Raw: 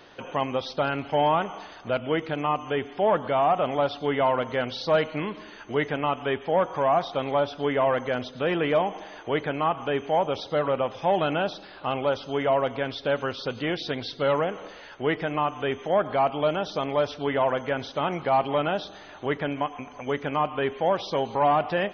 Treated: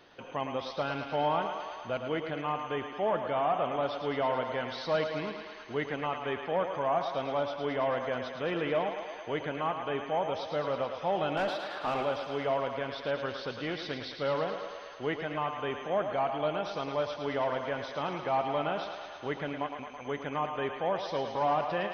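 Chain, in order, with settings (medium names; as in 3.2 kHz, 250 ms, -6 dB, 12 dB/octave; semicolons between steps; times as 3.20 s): 11.37–12.03 s: overdrive pedal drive 22 dB, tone 1.4 kHz, clips at -14.5 dBFS; thinning echo 109 ms, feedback 77%, high-pass 350 Hz, level -7 dB; trim -7.5 dB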